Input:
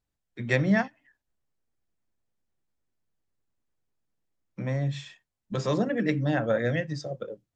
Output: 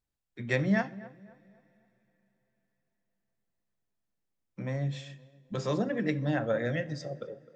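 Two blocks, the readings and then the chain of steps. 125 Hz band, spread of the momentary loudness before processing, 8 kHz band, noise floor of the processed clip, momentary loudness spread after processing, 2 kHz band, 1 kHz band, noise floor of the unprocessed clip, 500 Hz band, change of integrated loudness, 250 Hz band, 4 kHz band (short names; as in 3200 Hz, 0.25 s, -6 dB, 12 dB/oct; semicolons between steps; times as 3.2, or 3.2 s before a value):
-4.0 dB, 13 LU, n/a, -83 dBFS, 14 LU, -4.0 dB, -4.0 dB, -84 dBFS, -3.5 dB, -4.0 dB, -3.5 dB, -4.0 dB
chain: tape echo 0.258 s, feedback 46%, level -16 dB, low-pass 1200 Hz; two-slope reverb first 0.54 s, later 4.5 s, from -22 dB, DRR 15.5 dB; gain -4 dB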